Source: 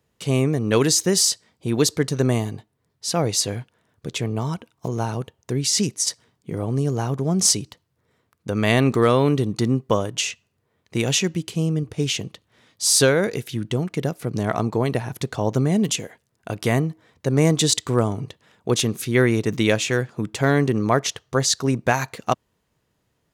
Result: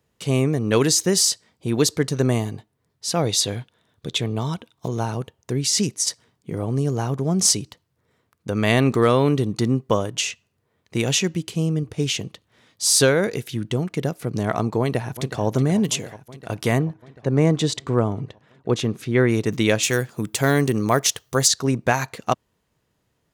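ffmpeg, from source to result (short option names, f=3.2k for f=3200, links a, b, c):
-filter_complex "[0:a]asettb=1/sr,asplit=3[a][b][c];[a]atrim=end=3.174[d];[b]atrim=start=3.17:end=5,asetpts=PTS-STARTPTS,afade=t=in:d=0.004:c=qsin,afade=t=out:st=1.826:d=0.004:c=qsin,equalizer=f=3.6k:w=4.8:g=10.5[e];[c]atrim=start=4.996[f];[d][e]acrossfade=d=0.004:c1=hsin:c2=qsin[g];[g][f]acrossfade=d=0.004:c1=qsin:c2=hsin,asplit=2[h][i];[i]afade=t=in:st=14.8:d=0.01,afade=t=out:st=15.42:d=0.01,aecho=0:1:370|740|1110|1480|1850|2220|2590|2960|3330|3700|4070|4440:0.237137|0.177853|0.13339|0.100042|0.0750317|0.0562738|0.0422054|0.031654|0.0237405|0.0178054|0.013354|0.0100155[j];[h][j]amix=inputs=2:normalize=0,asplit=3[k][l][m];[k]afade=t=out:st=16.77:d=0.02[n];[l]aemphasis=mode=reproduction:type=75kf,afade=t=in:st=16.77:d=0.02,afade=t=out:st=19.28:d=0.02[o];[m]afade=t=in:st=19.28:d=0.02[p];[n][o][p]amix=inputs=3:normalize=0,asettb=1/sr,asplit=3[q][r][s];[q]atrim=end=19.834[t];[r]atrim=start=19.83:end=21.48,asetpts=PTS-STARTPTS,afade=t=in:d=0.004:c=qsin,afade=t=out:st=1.646:d=0.004:c=qsin,aemphasis=mode=production:type=50fm[u];[s]atrim=start=21.476[v];[t][u]acrossfade=d=0.004:c1=hsin:c2=qsin[w];[w][v]acrossfade=d=0.004:c1=qsin:c2=hsin"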